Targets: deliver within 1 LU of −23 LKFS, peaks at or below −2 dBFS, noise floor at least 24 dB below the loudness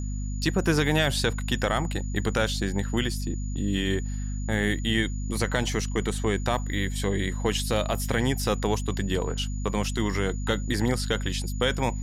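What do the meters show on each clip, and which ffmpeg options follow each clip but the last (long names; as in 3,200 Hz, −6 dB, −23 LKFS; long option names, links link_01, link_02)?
mains hum 50 Hz; hum harmonics up to 250 Hz; level of the hum −28 dBFS; interfering tone 6,900 Hz; level of the tone −45 dBFS; integrated loudness −27.0 LKFS; sample peak −9.0 dBFS; target loudness −23.0 LKFS
→ -af "bandreject=frequency=50:width_type=h:width=6,bandreject=frequency=100:width_type=h:width=6,bandreject=frequency=150:width_type=h:width=6,bandreject=frequency=200:width_type=h:width=6,bandreject=frequency=250:width_type=h:width=6"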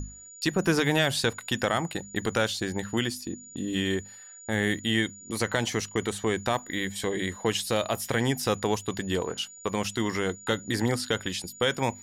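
mains hum none found; interfering tone 6,900 Hz; level of the tone −45 dBFS
→ -af "bandreject=frequency=6900:width=30"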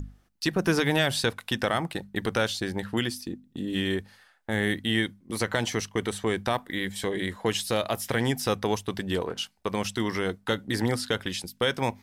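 interfering tone none found; integrated loudness −28.5 LKFS; sample peak −11.0 dBFS; target loudness −23.0 LKFS
→ -af "volume=5.5dB"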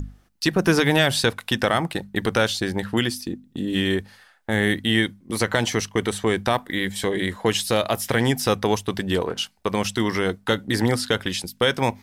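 integrated loudness −23.0 LKFS; sample peak −5.5 dBFS; background noise floor −59 dBFS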